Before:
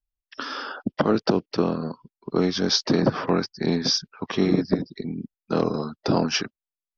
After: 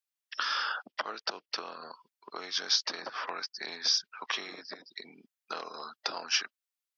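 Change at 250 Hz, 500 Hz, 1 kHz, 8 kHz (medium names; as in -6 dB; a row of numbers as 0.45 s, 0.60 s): -30.0 dB, -20.5 dB, -7.0 dB, no reading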